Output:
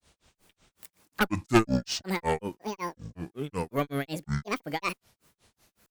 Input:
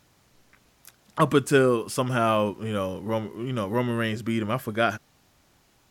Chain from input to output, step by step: treble shelf 7.5 kHz +10.5 dB; granulator 172 ms, grains 5.4 per s, spray 32 ms, pitch spread up and down by 12 st; Chebyshev shaper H 4 -8 dB, 6 -17 dB, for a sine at -6.5 dBFS; trim -1 dB

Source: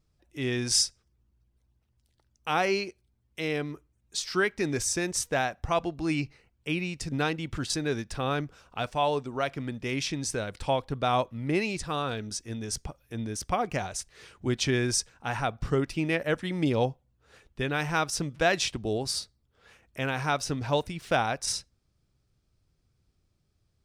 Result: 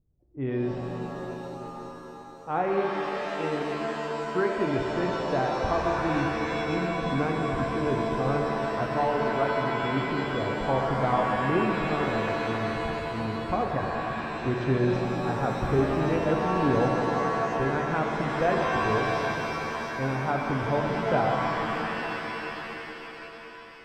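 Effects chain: low-pass 1.1 kHz 12 dB/octave; level-controlled noise filter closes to 490 Hz, open at -24 dBFS; pitch-shifted reverb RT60 4 s, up +7 st, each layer -2 dB, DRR 1 dB

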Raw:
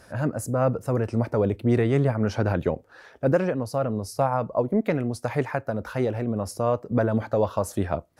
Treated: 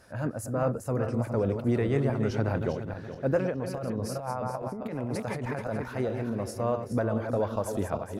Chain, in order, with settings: backward echo that repeats 210 ms, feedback 58%, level -7 dB; 3.75–5.84 s: compressor with a negative ratio -27 dBFS, ratio -1; trim -5.5 dB

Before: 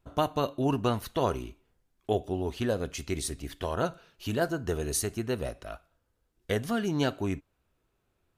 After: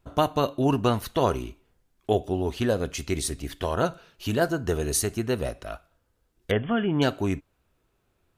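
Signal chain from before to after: 6.51–7.02 s: brick-wall FIR low-pass 3.5 kHz; trim +4.5 dB

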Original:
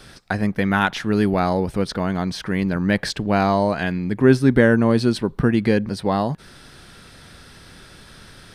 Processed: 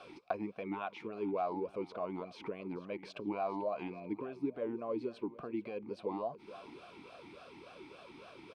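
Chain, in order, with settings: compression 6:1, threshold -31 dBFS, peak gain reduction 21 dB; feedback delay 438 ms, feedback 35%, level -17 dB; talking filter a-u 3.5 Hz; trim +7 dB

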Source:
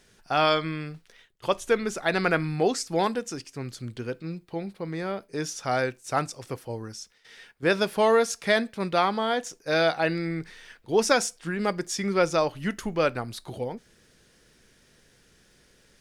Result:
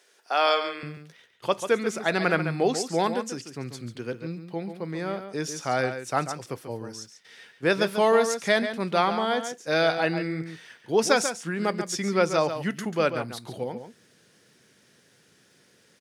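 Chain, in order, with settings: high-pass 380 Hz 24 dB/octave, from 0.83 s 110 Hz; echo from a far wall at 24 m, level -9 dB

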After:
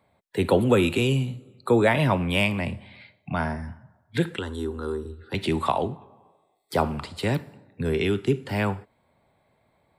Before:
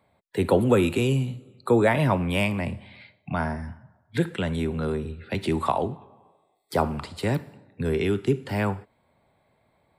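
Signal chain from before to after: dynamic bell 3.2 kHz, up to +5 dB, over -43 dBFS, Q 1.3; 4.39–5.34 s: static phaser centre 630 Hz, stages 6

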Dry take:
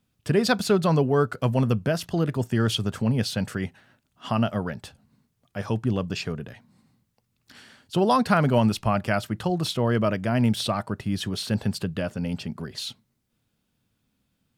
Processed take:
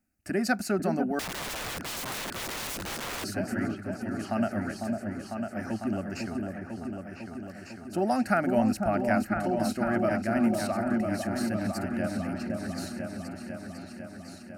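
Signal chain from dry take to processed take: static phaser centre 690 Hz, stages 8; delay with an opening low-pass 500 ms, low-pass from 750 Hz, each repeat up 2 oct, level -3 dB; 1.19–3.24 s: integer overflow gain 28.5 dB; trim -2 dB

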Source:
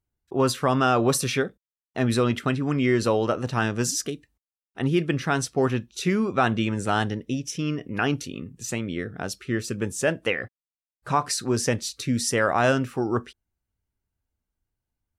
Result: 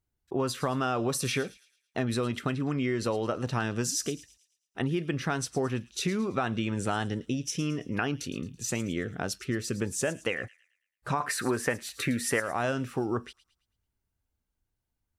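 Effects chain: 11.20–12.40 s: FFT filter 130 Hz 0 dB, 1.8 kHz +14 dB, 5.3 kHz -7 dB, 13 kHz +6 dB; compression 5:1, threshold -26 dBFS, peak gain reduction 14.5 dB; on a send: feedback echo behind a high-pass 110 ms, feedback 40%, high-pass 3.4 kHz, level -13.5 dB

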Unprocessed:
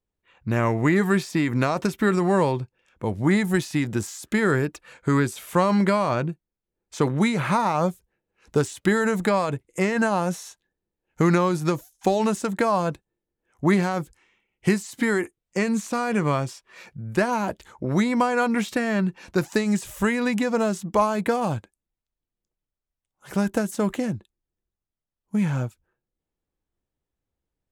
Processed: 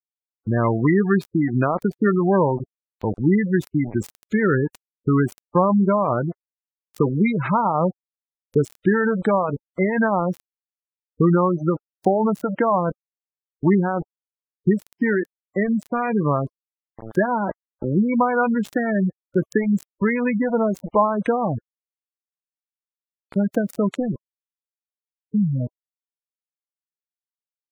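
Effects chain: small samples zeroed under -28.5 dBFS; spectral gate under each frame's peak -15 dB strong; trim +3 dB

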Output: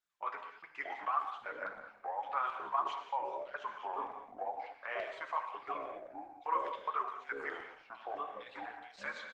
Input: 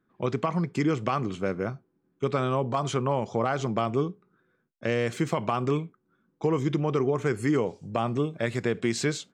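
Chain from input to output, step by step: reverb removal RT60 1.1 s; 6.94–7.83 s: de-esser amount 65%; low-pass 6.1 kHz 12 dB/octave; three-band isolator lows -15 dB, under 560 Hz, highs -23 dB, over 2.4 kHz; peak limiter -26.5 dBFS, peak gain reduction 9 dB; 8.52–8.98 s: compression 5:1, threshold -42 dBFS, peak gain reduction 8.5 dB; flange 1.4 Hz, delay 4.5 ms, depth 9.5 ms, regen -17%; LFO high-pass square 2.4 Hz 980–3800 Hz; ever faster or slower copies 534 ms, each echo -6 st, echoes 2, each echo -6 dB; speakerphone echo 120 ms, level -16 dB; gated-style reverb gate 240 ms flat, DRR 5 dB; trim +2 dB; Opus 16 kbps 48 kHz

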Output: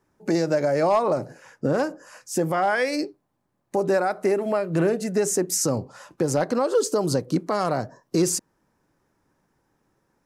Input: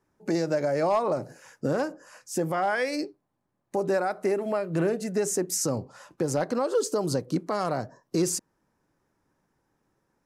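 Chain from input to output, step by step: 1.24–1.73 s: treble shelf 6.3 kHz -> 3.6 kHz -9.5 dB; trim +4 dB

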